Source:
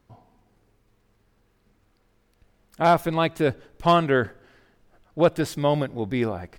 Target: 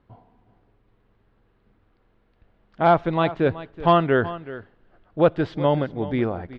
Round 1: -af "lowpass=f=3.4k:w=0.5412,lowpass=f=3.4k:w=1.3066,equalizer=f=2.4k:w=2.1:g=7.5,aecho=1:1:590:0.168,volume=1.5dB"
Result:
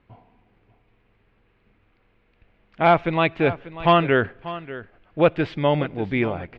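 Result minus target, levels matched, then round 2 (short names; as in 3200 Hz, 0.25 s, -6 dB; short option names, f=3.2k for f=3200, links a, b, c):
echo 0.214 s late; 2000 Hz band +4.5 dB
-af "lowpass=f=3.4k:w=0.5412,lowpass=f=3.4k:w=1.3066,equalizer=f=2.4k:w=2.1:g=-4,aecho=1:1:376:0.168,volume=1.5dB"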